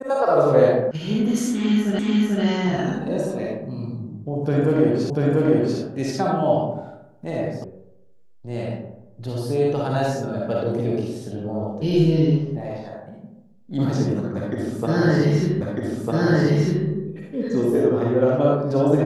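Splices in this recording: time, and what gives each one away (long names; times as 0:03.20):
0:00.91: cut off before it has died away
0:01.99: the same again, the last 0.44 s
0:05.10: the same again, the last 0.69 s
0:07.64: cut off before it has died away
0:15.61: the same again, the last 1.25 s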